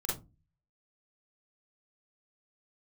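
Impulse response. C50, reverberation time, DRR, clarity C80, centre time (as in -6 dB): 4.0 dB, 0.25 s, -6.0 dB, 15.0 dB, 42 ms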